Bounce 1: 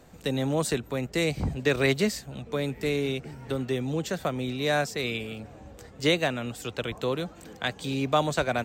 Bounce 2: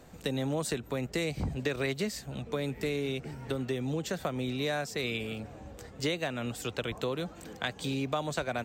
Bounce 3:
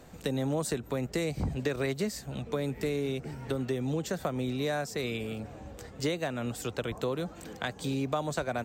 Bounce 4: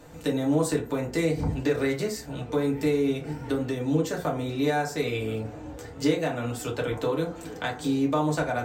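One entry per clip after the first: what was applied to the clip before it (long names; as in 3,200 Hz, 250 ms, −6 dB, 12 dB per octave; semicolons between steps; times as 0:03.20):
downward compressor 4 to 1, threshold −29 dBFS, peak gain reduction 10 dB
dynamic equaliser 2,900 Hz, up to −6 dB, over −48 dBFS, Q 1; level +1.5 dB
feedback delay network reverb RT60 0.41 s, low-frequency decay 0.8×, high-frequency decay 0.5×, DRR −2.5 dB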